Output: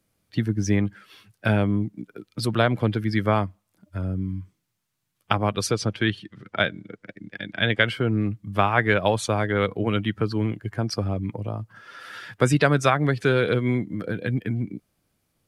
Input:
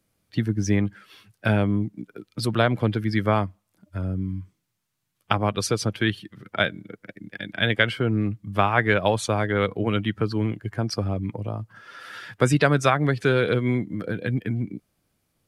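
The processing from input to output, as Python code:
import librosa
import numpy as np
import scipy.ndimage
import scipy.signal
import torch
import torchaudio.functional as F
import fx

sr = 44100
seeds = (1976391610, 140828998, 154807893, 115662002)

y = fx.lowpass(x, sr, hz=7300.0, slope=12, at=(5.71, 7.83))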